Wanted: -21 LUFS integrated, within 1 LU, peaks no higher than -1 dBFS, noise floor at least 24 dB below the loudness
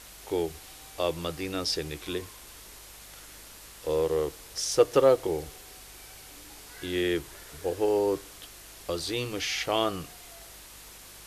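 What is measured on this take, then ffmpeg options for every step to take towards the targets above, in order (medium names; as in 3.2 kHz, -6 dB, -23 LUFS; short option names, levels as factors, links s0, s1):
hum 50 Hz; highest harmonic 200 Hz; hum level -57 dBFS; noise floor -48 dBFS; noise floor target -53 dBFS; loudness -29.0 LUFS; peak level -7.5 dBFS; loudness target -21.0 LUFS
-> -af "bandreject=f=50:t=h:w=4,bandreject=f=100:t=h:w=4,bandreject=f=150:t=h:w=4,bandreject=f=200:t=h:w=4"
-af "afftdn=nr=6:nf=-48"
-af "volume=2.51,alimiter=limit=0.891:level=0:latency=1"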